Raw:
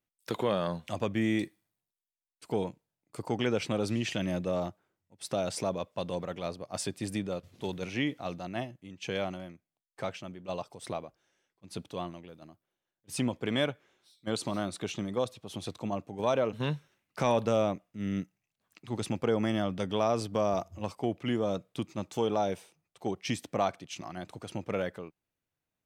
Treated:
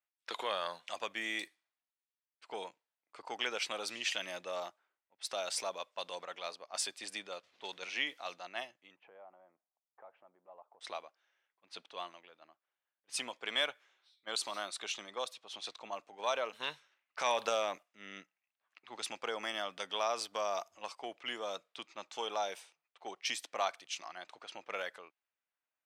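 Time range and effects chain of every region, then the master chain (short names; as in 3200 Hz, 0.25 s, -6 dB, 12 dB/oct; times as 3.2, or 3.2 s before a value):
8.96–10.81 synth low-pass 840 Hz, resonance Q 1.6 + compressor 2:1, threshold -56 dBFS
17.26–17.83 low shelf 62 Hz +6.5 dB + transient shaper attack +9 dB, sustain +5 dB + short-mantissa float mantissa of 8-bit
whole clip: HPF 920 Hz 12 dB/oct; low-pass opened by the level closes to 2500 Hz, open at -36.5 dBFS; dynamic EQ 4200 Hz, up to +3 dB, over -51 dBFS, Q 1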